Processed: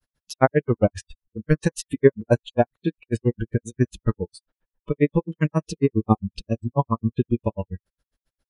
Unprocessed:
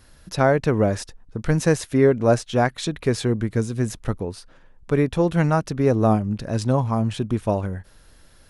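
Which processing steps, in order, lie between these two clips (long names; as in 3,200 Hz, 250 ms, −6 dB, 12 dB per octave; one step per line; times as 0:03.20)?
granular cloud 72 ms, grains 7.4 per second, spray 17 ms, pitch spread up and down by 0 semitones
noise reduction from a noise print of the clip's start 25 dB
level +5 dB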